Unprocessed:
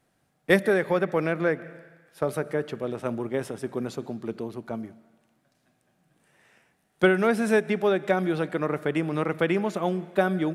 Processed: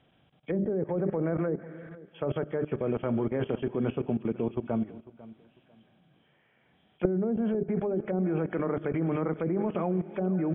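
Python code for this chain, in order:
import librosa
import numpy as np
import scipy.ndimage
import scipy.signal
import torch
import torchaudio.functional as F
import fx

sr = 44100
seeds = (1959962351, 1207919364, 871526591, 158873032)

y = fx.freq_compress(x, sr, knee_hz=2200.0, ratio=4.0)
y = fx.highpass(y, sr, hz=79.0, slope=6)
y = fx.hum_notches(y, sr, base_hz=50, count=8)
y = fx.env_lowpass_down(y, sr, base_hz=430.0, full_db=-18.5)
y = fx.level_steps(y, sr, step_db=18)
y = fx.tilt_eq(y, sr, slope=-2.0)
y = fx.echo_feedback(y, sr, ms=497, feedback_pct=25, wet_db=-19.0)
y = F.gain(torch.from_numpy(y), 5.0).numpy()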